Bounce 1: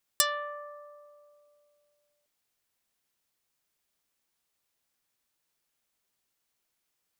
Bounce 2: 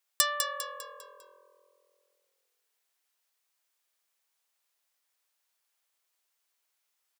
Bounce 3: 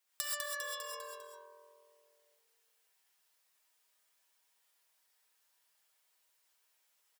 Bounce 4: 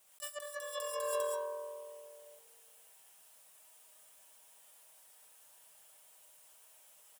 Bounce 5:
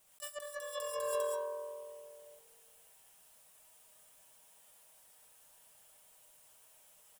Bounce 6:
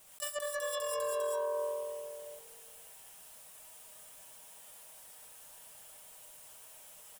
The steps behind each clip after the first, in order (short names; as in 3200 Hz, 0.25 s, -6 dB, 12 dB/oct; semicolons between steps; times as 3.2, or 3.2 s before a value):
HPF 600 Hz 12 dB/oct; on a send: frequency-shifting echo 0.2 s, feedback 43%, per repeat -43 Hz, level -6 dB
comb 6.4 ms, depth 56%; compressor 2.5:1, threshold -41 dBFS, peak gain reduction 15 dB; non-linear reverb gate 0.15 s rising, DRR -3.5 dB; gain -2 dB
EQ curve 220 Hz 0 dB, 330 Hz -7 dB, 590 Hz +6 dB, 930 Hz 0 dB, 2000 Hz -6 dB, 3000 Hz -1 dB, 4500 Hz -8 dB, 9400 Hz +5 dB, 14000 Hz -1 dB; negative-ratio compressor -46 dBFS, ratio -0.5; companded quantiser 8-bit; gain +8.5 dB
low shelf 280 Hz +10 dB; gain -1.5 dB
limiter -35.5 dBFS, peak gain reduction 11 dB; gain +9 dB